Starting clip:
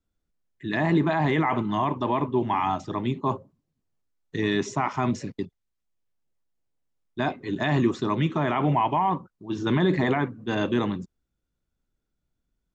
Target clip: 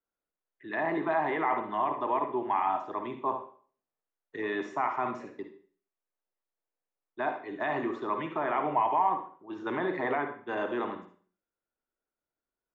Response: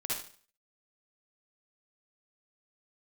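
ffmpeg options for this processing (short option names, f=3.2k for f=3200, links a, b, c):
-filter_complex "[0:a]acrossover=split=360 2300:gain=0.0708 1 0.0891[a][b][c];[a][b][c]amix=inputs=3:normalize=0,asplit=2[d][e];[1:a]atrim=start_sample=2205[f];[e][f]afir=irnorm=-1:irlink=0,volume=-7dB[g];[d][g]amix=inputs=2:normalize=0,volume=-4.5dB"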